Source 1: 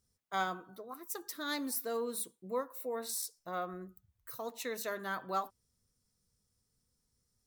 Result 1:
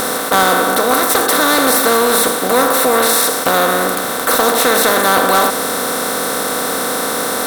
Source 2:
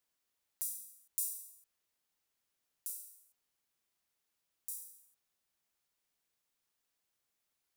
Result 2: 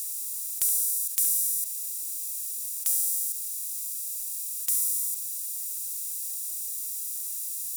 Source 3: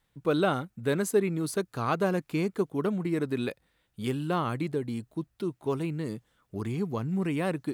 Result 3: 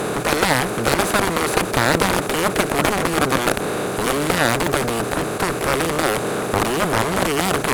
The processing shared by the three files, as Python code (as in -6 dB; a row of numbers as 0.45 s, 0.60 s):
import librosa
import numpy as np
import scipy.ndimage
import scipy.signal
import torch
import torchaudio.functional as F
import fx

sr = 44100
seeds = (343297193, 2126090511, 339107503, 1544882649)

y = fx.bin_compress(x, sr, power=0.2)
y = fx.cheby_harmonics(y, sr, harmonics=(6, 7), levels_db=(-33, -8), full_scale_db=-4.5)
y = y * 10.0 ** (-3 / 20.0) / np.max(np.abs(y))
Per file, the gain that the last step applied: +13.0 dB, +5.5 dB, +1.0 dB